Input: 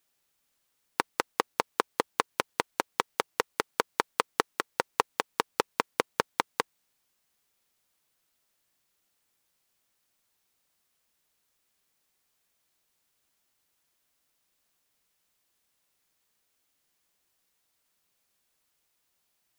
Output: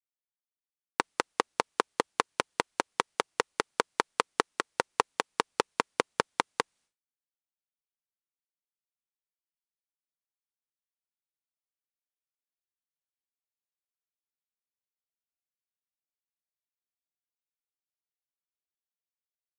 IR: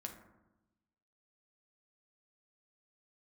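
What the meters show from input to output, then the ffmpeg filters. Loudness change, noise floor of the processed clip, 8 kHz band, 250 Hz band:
0.0 dB, under -85 dBFS, -0.5 dB, 0.0 dB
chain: -af "aresample=22050,aresample=44100,agate=range=0.0224:threshold=0.001:ratio=3:detection=peak"

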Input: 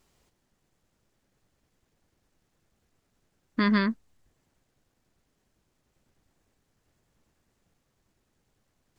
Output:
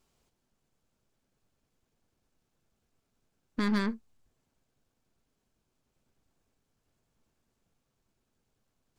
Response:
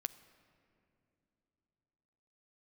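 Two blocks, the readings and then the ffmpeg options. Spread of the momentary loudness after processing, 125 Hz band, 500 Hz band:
14 LU, no reading, -4.0 dB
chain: -filter_complex "[0:a]equalizer=f=1900:w=7.1:g=-6[s0];[1:a]atrim=start_sample=2205,atrim=end_sample=6174,asetrate=88200,aresample=44100[s1];[s0][s1]afir=irnorm=-1:irlink=0,aeval=exprs='0.0944*(cos(1*acos(clip(val(0)/0.0944,-1,1)))-cos(1*PI/2))+0.00668*(cos(8*acos(clip(val(0)/0.0944,-1,1)))-cos(8*PI/2))':c=same,volume=1.33"

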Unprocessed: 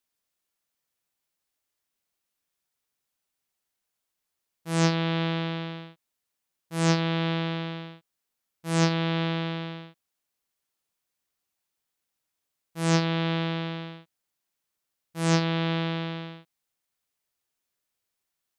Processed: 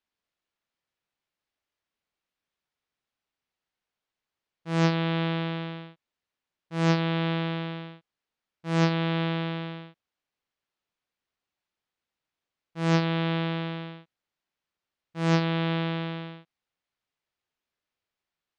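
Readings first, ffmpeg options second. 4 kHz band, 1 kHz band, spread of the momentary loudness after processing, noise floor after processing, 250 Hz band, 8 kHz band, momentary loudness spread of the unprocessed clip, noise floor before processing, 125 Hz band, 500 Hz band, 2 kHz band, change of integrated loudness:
-2.5 dB, 0.0 dB, 18 LU, under -85 dBFS, 0.0 dB, -10.5 dB, 18 LU, -83 dBFS, 0.0 dB, 0.0 dB, -0.5 dB, -0.5 dB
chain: -af "lowpass=3800"

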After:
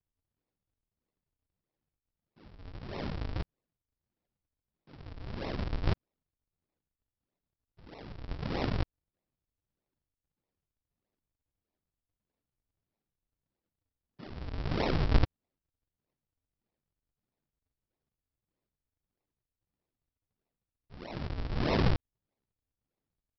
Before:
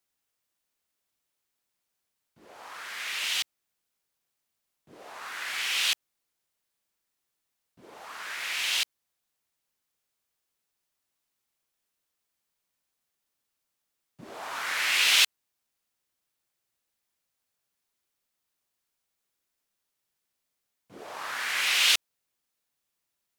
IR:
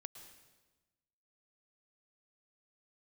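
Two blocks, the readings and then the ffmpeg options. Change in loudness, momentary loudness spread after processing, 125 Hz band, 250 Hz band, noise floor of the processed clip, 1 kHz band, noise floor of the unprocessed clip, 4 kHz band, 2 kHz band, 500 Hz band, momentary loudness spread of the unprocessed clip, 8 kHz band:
-9.0 dB, 21 LU, no reading, +19.0 dB, under -85 dBFS, -3.0 dB, -82 dBFS, -19.0 dB, -16.0 dB, +9.5 dB, 20 LU, under -30 dB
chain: -af "highshelf=f=3400:g=-4.5,aresample=11025,acrusher=samples=35:mix=1:aa=0.000001:lfo=1:lforange=56:lforate=1.6,aresample=44100"

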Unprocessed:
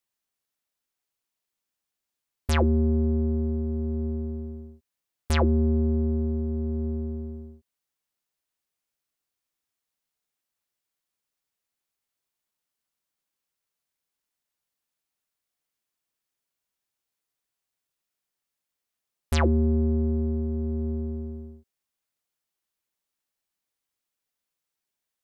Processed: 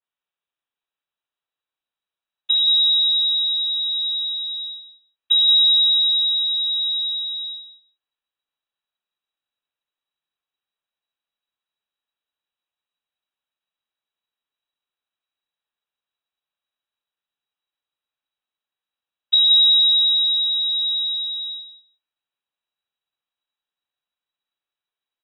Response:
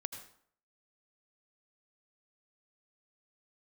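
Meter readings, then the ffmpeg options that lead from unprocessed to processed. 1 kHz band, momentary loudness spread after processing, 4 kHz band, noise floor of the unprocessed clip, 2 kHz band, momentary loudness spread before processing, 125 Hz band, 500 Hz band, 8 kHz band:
under -25 dB, 15 LU, +32.0 dB, under -85 dBFS, under -15 dB, 15 LU, under -40 dB, under -40 dB, under -30 dB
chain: -filter_complex "[0:a]bandreject=f=1800:w=5.9,asubboost=boost=7.5:cutoff=62,acrossover=split=420[s0][s1];[s1]acompressor=threshold=0.00447:ratio=10[s2];[s0][s2]amix=inputs=2:normalize=0,lowpass=f=3300:t=q:w=0.5098,lowpass=f=3300:t=q:w=0.6013,lowpass=f=3300:t=q:w=0.9,lowpass=f=3300:t=q:w=2.563,afreqshift=-3900,asplit=2[s3][s4];[s4]aecho=0:1:174|348:0.398|0.0597[s5];[s3][s5]amix=inputs=2:normalize=0,adynamicequalizer=threshold=0.0398:dfrequency=2000:dqfactor=0.7:tfrequency=2000:tqfactor=0.7:attack=5:release=100:ratio=0.375:range=2:mode=cutabove:tftype=highshelf"

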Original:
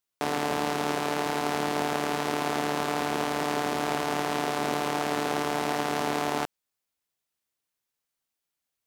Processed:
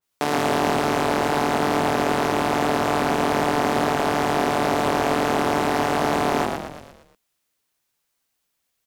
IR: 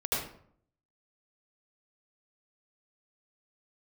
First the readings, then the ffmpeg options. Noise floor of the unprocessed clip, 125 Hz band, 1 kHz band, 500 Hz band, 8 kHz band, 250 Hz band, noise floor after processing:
-85 dBFS, +8.5 dB, +7.0 dB, +8.0 dB, +4.0 dB, +7.5 dB, -75 dBFS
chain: -filter_complex "[0:a]alimiter=limit=0.158:level=0:latency=1,asplit=2[s0][s1];[s1]asplit=6[s2][s3][s4][s5][s6][s7];[s2]adelay=116,afreqshift=-43,volume=0.596[s8];[s3]adelay=232,afreqshift=-86,volume=0.299[s9];[s4]adelay=348,afreqshift=-129,volume=0.15[s10];[s5]adelay=464,afreqshift=-172,volume=0.0741[s11];[s6]adelay=580,afreqshift=-215,volume=0.0372[s12];[s7]adelay=696,afreqshift=-258,volume=0.0186[s13];[s8][s9][s10][s11][s12][s13]amix=inputs=6:normalize=0[s14];[s0][s14]amix=inputs=2:normalize=0,adynamicequalizer=threshold=0.00501:dfrequency=2200:dqfactor=0.7:tfrequency=2200:tqfactor=0.7:attack=5:release=100:ratio=0.375:range=2:mode=cutabove:tftype=highshelf,volume=2.51"

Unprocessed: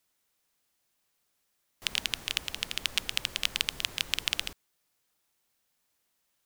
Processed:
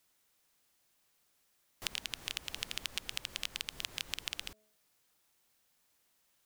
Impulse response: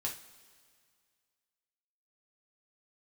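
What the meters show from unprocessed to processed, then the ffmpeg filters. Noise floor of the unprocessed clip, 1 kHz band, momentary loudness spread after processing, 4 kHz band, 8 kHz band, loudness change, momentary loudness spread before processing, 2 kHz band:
-77 dBFS, -7.0 dB, 3 LU, -9.0 dB, -6.5 dB, -8.5 dB, 4 LU, -9.0 dB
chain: -af "bandreject=f=213.8:t=h:w=4,bandreject=f=427.6:t=h:w=4,bandreject=f=641.4:t=h:w=4,acompressor=threshold=0.0178:ratio=12,volume=1.33"

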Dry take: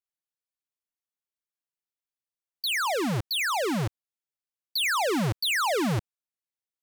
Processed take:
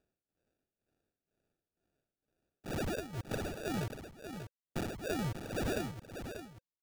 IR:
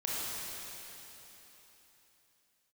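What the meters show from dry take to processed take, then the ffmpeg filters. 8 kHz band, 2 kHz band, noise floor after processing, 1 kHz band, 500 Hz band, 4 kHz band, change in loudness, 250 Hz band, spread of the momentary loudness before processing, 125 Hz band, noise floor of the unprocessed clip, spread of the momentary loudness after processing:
-14.5 dB, -16.0 dB, under -85 dBFS, -15.5 dB, -8.5 dB, -19.5 dB, -13.0 dB, -8.0 dB, 8 LU, -8.0 dB, under -85 dBFS, 11 LU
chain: -filter_complex "[0:a]bandreject=f=500:w=12,agate=range=0.0224:threshold=0.1:ratio=3:detection=peak,highshelf=f=12000:g=9.5,acrossover=split=330|1100[s0][s1][s2];[s1]acompressor=mode=upward:threshold=0.002:ratio=2.5[s3];[s0][s3][s2]amix=inputs=3:normalize=0,tremolo=f=2.1:d=0.89,acrusher=samples=42:mix=1:aa=0.000001,acompressor=threshold=0.00708:ratio=6,asplit=2[s4][s5];[s5]aecho=0:1:589:0.376[s6];[s4][s6]amix=inputs=2:normalize=0,volume=2.99"

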